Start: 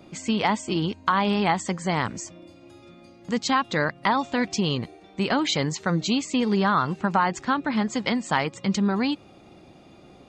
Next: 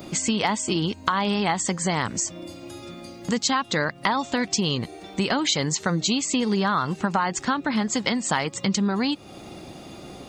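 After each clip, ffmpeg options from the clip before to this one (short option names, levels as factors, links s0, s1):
-af "aemphasis=mode=production:type=50kf,bandreject=f=2400:w=24,acompressor=threshold=0.02:ratio=2.5,volume=2.82"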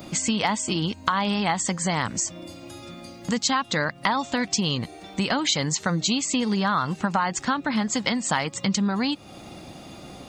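-af "equalizer=f=390:w=3:g=-5.5"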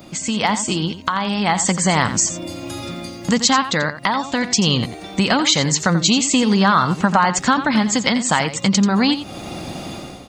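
-af "dynaudnorm=f=110:g=7:m=4.47,aecho=1:1:87:0.266,volume=0.891"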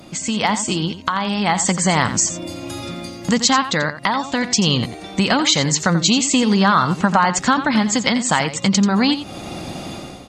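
-af "aresample=32000,aresample=44100"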